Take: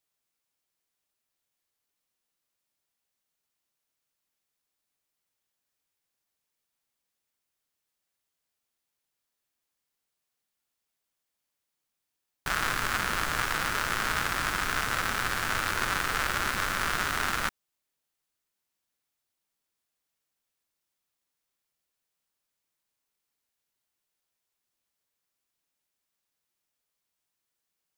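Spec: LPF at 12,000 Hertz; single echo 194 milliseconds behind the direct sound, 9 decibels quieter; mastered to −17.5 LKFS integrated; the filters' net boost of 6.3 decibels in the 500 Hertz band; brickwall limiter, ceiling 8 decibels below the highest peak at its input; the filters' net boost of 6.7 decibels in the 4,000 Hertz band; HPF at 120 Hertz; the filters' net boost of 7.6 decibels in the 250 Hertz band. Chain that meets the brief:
high-pass filter 120 Hz
low-pass filter 12,000 Hz
parametric band 250 Hz +8.5 dB
parametric band 500 Hz +5.5 dB
parametric band 4,000 Hz +8.5 dB
brickwall limiter −15.5 dBFS
single-tap delay 194 ms −9 dB
level +12 dB

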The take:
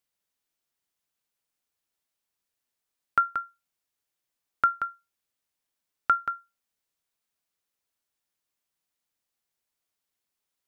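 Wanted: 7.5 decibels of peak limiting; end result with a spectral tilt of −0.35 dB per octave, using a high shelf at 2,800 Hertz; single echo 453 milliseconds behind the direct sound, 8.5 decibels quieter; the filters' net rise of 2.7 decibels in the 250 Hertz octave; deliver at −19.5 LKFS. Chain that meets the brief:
parametric band 250 Hz +3.5 dB
high-shelf EQ 2,800 Hz +3 dB
brickwall limiter −18 dBFS
single-tap delay 453 ms −8.5 dB
level +13.5 dB

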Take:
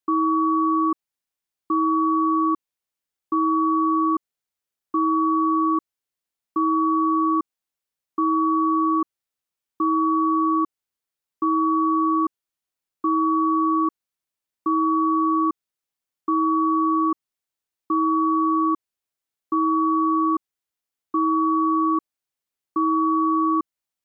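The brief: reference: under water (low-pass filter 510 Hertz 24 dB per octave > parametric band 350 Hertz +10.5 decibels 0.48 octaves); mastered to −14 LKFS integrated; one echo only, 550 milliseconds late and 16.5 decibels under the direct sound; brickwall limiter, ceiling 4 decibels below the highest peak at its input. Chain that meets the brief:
brickwall limiter −18 dBFS
low-pass filter 510 Hz 24 dB per octave
parametric band 350 Hz +10.5 dB 0.48 octaves
single-tap delay 550 ms −16.5 dB
level +7 dB

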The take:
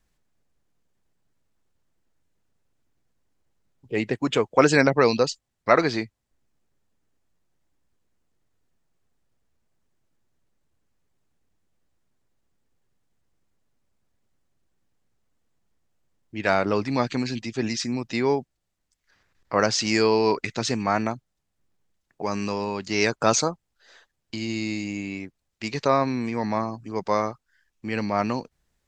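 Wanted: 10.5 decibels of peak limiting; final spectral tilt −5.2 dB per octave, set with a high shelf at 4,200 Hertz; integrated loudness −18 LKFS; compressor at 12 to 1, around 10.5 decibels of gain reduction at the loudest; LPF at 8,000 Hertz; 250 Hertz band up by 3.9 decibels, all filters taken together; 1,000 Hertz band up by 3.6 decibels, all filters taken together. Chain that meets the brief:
low-pass filter 8,000 Hz
parametric band 250 Hz +4.5 dB
parametric band 1,000 Hz +4.5 dB
high-shelf EQ 4,200 Hz −3 dB
downward compressor 12 to 1, threshold −19 dBFS
level +10.5 dB
brickwall limiter −6 dBFS

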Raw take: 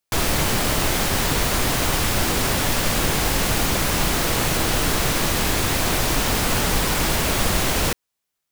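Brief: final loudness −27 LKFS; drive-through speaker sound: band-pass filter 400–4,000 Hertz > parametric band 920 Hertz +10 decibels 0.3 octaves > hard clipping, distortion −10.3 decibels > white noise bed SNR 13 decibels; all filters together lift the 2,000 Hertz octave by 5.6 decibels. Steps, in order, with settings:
band-pass filter 400–4,000 Hz
parametric band 920 Hz +10 dB 0.3 octaves
parametric band 2,000 Hz +7 dB
hard clipping −20.5 dBFS
white noise bed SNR 13 dB
level −5 dB

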